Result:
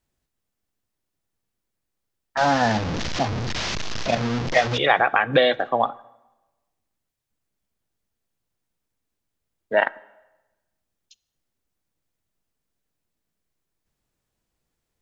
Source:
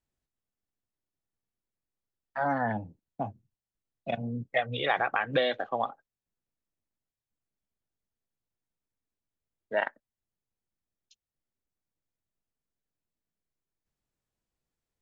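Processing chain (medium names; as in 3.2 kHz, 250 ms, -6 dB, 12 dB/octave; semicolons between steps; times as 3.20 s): 2.37–4.78 s: one-bit delta coder 32 kbps, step -29 dBFS; plate-style reverb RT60 1.1 s, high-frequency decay 0.8×, DRR 20 dB; trim +9 dB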